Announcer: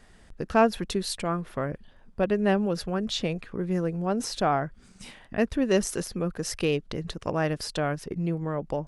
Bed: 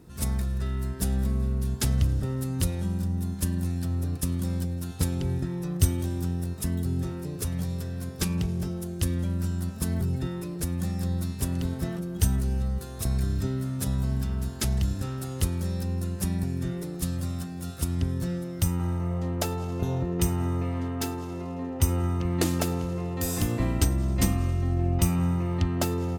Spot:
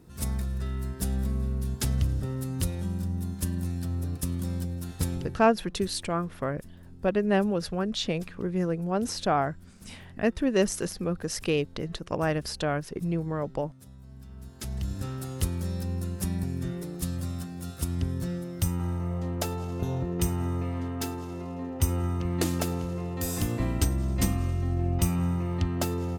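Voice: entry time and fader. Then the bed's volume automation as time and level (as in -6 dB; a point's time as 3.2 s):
4.85 s, -0.5 dB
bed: 5.16 s -2.5 dB
5.5 s -22 dB
14.02 s -22 dB
15.04 s -2 dB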